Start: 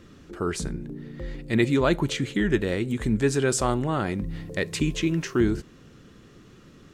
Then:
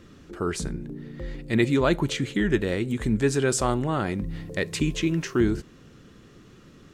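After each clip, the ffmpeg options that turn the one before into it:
-af anull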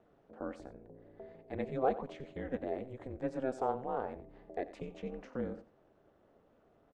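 -af "bandpass=f=630:t=q:w=3.1:csg=0,aeval=exprs='val(0)*sin(2*PI*130*n/s)':c=same,aecho=1:1:90:0.158"

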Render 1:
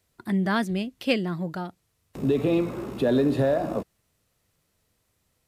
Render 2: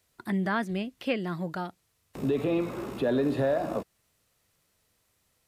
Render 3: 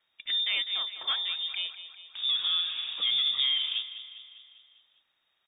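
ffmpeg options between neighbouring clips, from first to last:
-filter_complex "[0:a]acrossover=split=2700[s0][s1];[s1]acompressor=threshold=0.00398:ratio=4:attack=1:release=60[s2];[s0][s2]amix=inputs=2:normalize=0,lowshelf=f=480:g=-6,asplit=2[s3][s4];[s4]alimiter=limit=0.0708:level=0:latency=1:release=258,volume=1.06[s5];[s3][s5]amix=inputs=2:normalize=0,volume=0.596"
-filter_complex "[0:a]asoftclip=type=tanh:threshold=0.0944,asplit=2[s0][s1];[s1]aecho=0:1:200|400|600|800|1000|1200:0.224|0.13|0.0753|0.0437|0.0253|0.0147[s2];[s0][s2]amix=inputs=2:normalize=0,lowpass=f=3200:t=q:w=0.5098,lowpass=f=3200:t=q:w=0.6013,lowpass=f=3200:t=q:w=0.9,lowpass=f=3200:t=q:w=2.563,afreqshift=-3800"

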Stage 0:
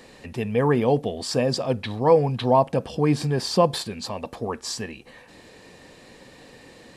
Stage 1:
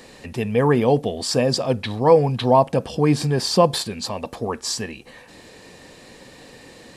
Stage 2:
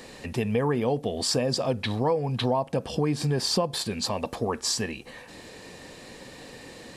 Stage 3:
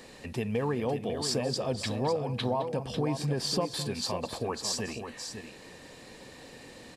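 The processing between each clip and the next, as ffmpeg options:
-af "bass=f=250:g=0,treble=f=4000:g=3,volume=1.41"
-af "acompressor=threshold=0.0794:ratio=6"
-af "aecho=1:1:211|549:0.168|0.398,volume=0.562"

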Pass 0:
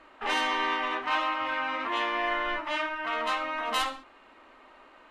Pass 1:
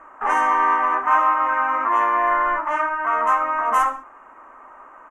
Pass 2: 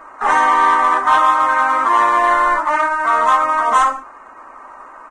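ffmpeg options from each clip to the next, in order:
-af "firequalizer=gain_entry='entry(360,0);entry(1100,12);entry(4100,-29);entry(6100,0)':delay=0.05:min_phase=1,volume=1.33"
-af "acontrast=84,acrusher=bits=7:mode=log:mix=0:aa=0.000001,volume=0.891" -ar 22050 -c:a libvorbis -b:a 16k

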